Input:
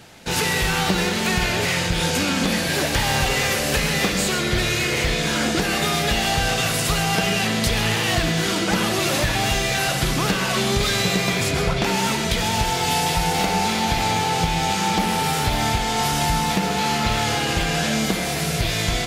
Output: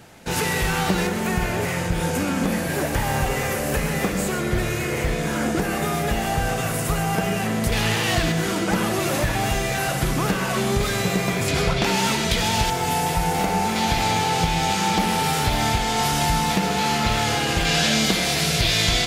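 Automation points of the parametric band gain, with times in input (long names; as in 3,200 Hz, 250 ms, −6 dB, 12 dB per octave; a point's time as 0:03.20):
parametric band 4,000 Hz 1.6 octaves
−6 dB
from 0:01.07 −13 dB
from 0:07.72 −2 dB
from 0:08.32 −8 dB
from 0:11.48 +1 dB
from 0:12.70 −8 dB
from 0:13.76 −0.5 dB
from 0:17.65 +6.5 dB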